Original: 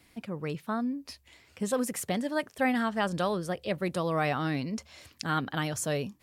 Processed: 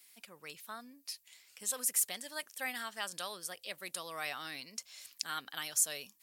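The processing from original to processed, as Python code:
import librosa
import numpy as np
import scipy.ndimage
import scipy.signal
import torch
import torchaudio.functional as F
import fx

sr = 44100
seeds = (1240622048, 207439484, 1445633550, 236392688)

y = np.diff(x, prepend=0.0)
y = F.gain(torch.from_numpy(y), 5.0).numpy()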